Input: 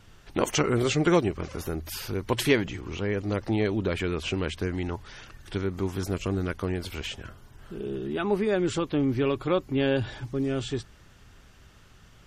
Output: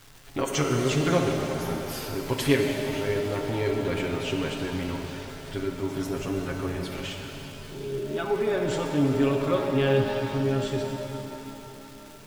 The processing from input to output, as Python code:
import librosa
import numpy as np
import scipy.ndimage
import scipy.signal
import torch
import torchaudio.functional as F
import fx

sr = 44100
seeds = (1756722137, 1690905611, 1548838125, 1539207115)

y = x + 0.72 * np.pad(x, (int(7.3 * sr / 1000.0), 0))[:len(x)]
y = fx.dmg_crackle(y, sr, seeds[0], per_s=550.0, level_db=-36.0)
y = fx.rev_shimmer(y, sr, seeds[1], rt60_s=3.5, semitones=7, shimmer_db=-8, drr_db=2.0)
y = F.gain(torch.from_numpy(y), -4.0).numpy()